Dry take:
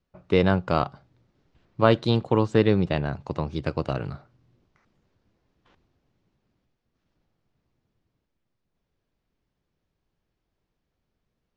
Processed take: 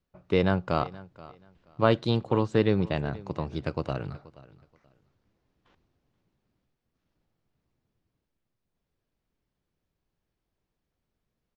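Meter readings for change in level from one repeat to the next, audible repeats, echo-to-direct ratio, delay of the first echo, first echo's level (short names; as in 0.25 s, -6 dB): -13.0 dB, 2, -20.0 dB, 0.479 s, -20.0 dB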